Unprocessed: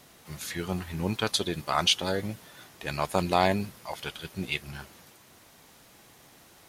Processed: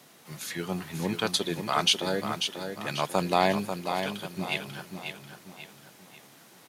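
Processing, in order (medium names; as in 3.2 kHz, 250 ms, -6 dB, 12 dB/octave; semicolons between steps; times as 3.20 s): high-pass 130 Hz 24 dB/octave; on a send: feedback delay 541 ms, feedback 40%, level -7 dB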